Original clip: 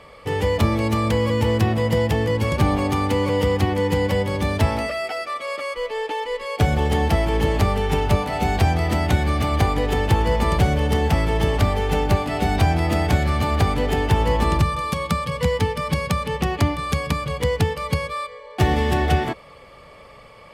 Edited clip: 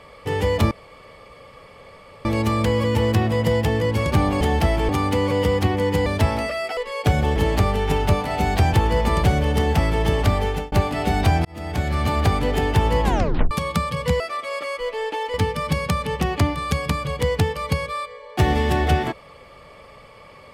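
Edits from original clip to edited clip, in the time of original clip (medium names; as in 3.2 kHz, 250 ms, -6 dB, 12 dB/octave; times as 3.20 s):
0.71 s: insert room tone 1.54 s
4.04–4.46 s: delete
5.17–6.31 s: move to 15.55 s
6.90–7.38 s: move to 2.87 s
8.75–10.08 s: delete
11.82–12.07 s: fade out
12.80–13.41 s: fade in linear
14.38 s: tape stop 0.48 s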